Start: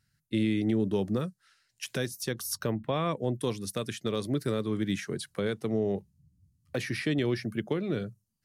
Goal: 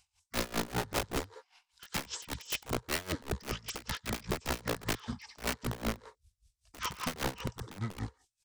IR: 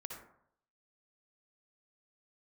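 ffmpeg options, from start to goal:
-filter_complex "[0:a]acrossover=split=5400[s0][s1];[s1]acompressor=threshold=0.00355:ratio=4:attack=1:release=60[s2];[s0][s2]amix=inputs=2:normalize=0,asetrate=24046,aresample=44100,atempo=1.83401,crystalizer=i=7:c=0,aeval=exprs='(mod(15*val(0)+1,2)-1)/15':c=same,asplit=2[s3][s4];[s4]highpass=f=410:w=0.5412,highpass=f=410:w=1.3066,equalizer=f=460:t=q:w=4:g=8,equalizer=f=670:t=q:w=4:g=-8,equalizer=f=960:t=q:w=4:g=7,equalizer=f=1600:t=q:w=4:g=5,equalizer=f=2600:t=q:w=4:g=-7,equalizer=f=4000:t=q:w=4:g=7,lowpass=f=8300:w=0.5412,lowpass=f=8300:w=1.3066[s5];[1:a]atrim=start_sample=2205,afade=t=out:st=0.14:d=0.01,atrim=end_sample=6615,adelay=97[s6];[s5][s6]afir=irnorm=-1:irlink=0,volume=0.237[s7];[s3][s7]amix=inputs=2:normalize=0,aeval=exprs='val(0)*pow(10,-21*(0.5-0.5*cos(2*PI*5.1*n/s))/20)':c=same"

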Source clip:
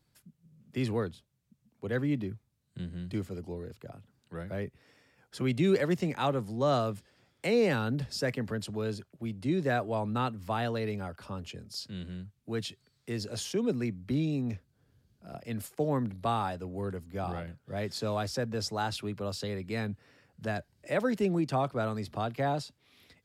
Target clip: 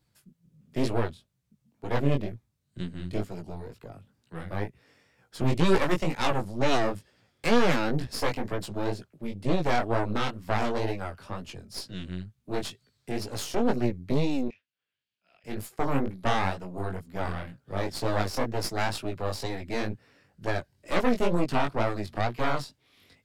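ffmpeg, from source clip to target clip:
-filter_complex "[0:a]asettb=1/sr,asplit=3[s0][s1][s2];[s0]atrim=end=14.484[s3];[s1]atrim=start=14.48:end=15.44,asetpts=PTS-STARTPTS,afade=t=in:d=0.004:c=qsin,afade=t=out:st=0.956:d=0.004:c=qsin,bandpass=f=2700:t=q:w=3.1:csg=0[s4];[s2]atrim=start=15.436[s5];[s3][s4]acrossfade=d=0.004:c1=hsin:c2=qsin[s6];[s6][s5]acrossfade=d=0.004:c1=qsin:c2=hsin,aeval=exprs='0.178*(cos(1*acos(clip(val(0)/0.178,-1,1)))-cos(1*PI/2))+0.0562*(cos(6*acos(clip(val(0)/0.178,-1,1)))-cos(6*PI/2))':c=same,flanger=delay=16:depth=6.1:speed=2.1,volume=1.5"

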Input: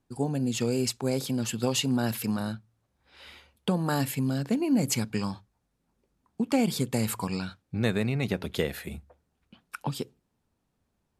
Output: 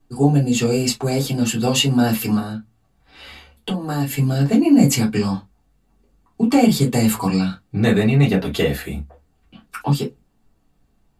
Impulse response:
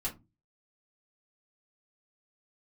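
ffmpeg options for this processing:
-filter_complex "[0:a]asplit=3[s0][s1][s2];[s0]afade=t=out:st=2.37:d=0.02[s3];[s1]acompressor=threshold=0.0224:ratio=4,afade=t=in:st=2.37:d=0.02,afade=t=out:st=4.1:d=0.02[s4];[s2]afade=t=in:st=4.1:d=0.02[s5];[s3][s4][s5]amix=inputs=3:normalize=0[s6];[1:a]atrim=start_sample=2205,atrim=end_sample=3087[s7];[s6][s7]afir=irnorm=-1:irlink=0,volume=2.37"

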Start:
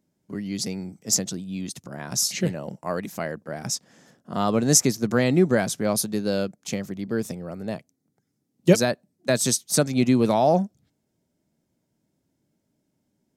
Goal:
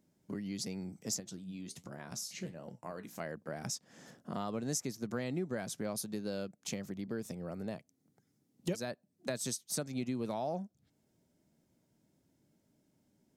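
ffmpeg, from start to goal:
-filter_complex "[0:a]acompressor=threshold=0.01:ratio=3,asettb=1/sr,asplit=3[s0][s1][s2];[s0]atrim=end=1.204[s3];[s1]atrim=start=1.2:end=3.2,asetpts=PTS-STARTPTS,afade=t=in:d=0.004:c=qsin,afade=t=out:st=1.996:d=0.004:c=qsin,flanger=delay=8:depth=9.8:regen=64:speed=1.3:shape=sinusoidal[s4];[s2]atrim=start=3.196[s5];[s3][s4]acrossfade=d=0.004:c1=hsin:c2=qsin[s6];[s6][s5]acrossfade=d=0.004:c1=qsin:c2=hsin"

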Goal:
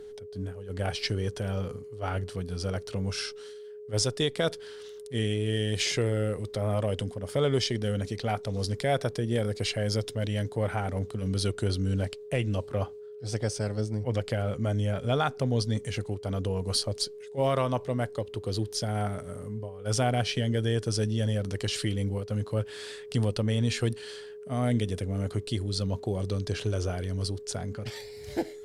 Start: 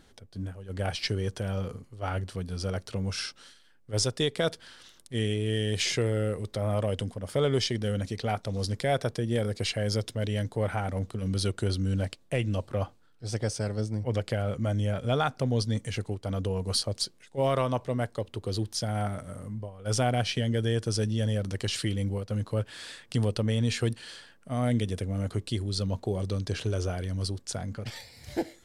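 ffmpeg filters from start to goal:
-af "aeval=exprs='val(0)+0.00891*sin(2*PI*420*n/s)':c=same" -ar 48000 -c:a libopus -b:a 256k

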